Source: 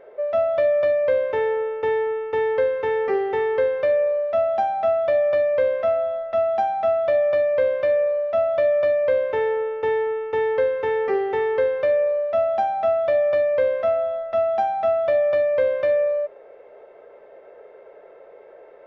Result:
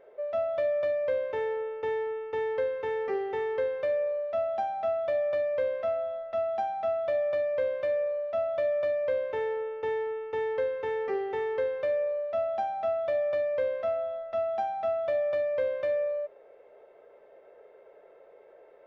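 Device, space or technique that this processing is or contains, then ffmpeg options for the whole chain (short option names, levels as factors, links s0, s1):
exciter from parts: -filter_complex "[0:a]asplit=2[s0][s1];[s1]highpass=2400,asoftclip=type=tanh:threshold=0.0119,volume=0.447[s2];[s0][s2]amix=inputs=2:normalize=0,volume=0.376"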